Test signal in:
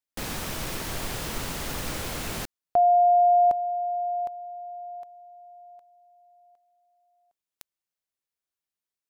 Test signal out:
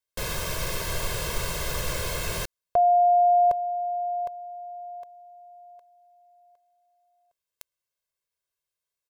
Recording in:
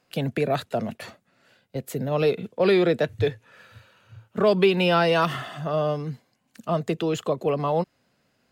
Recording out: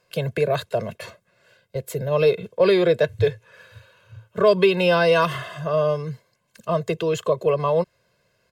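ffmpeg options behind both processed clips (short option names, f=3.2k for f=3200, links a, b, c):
-af "aecho=1:1:1.9:0.86"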